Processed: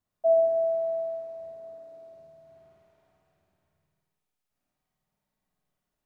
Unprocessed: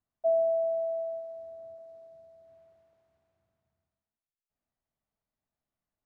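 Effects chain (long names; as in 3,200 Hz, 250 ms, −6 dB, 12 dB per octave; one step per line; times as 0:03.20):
0:01.52–0:02.03: high-pass filter 160 Hz 6 dB per octave
flutter between parallel walls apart 8.9 metres, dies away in 1 s
spring reverb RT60 1.1 s, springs 45/57 ms, chirp 80 ms, DRR 3 dB
level +3 dB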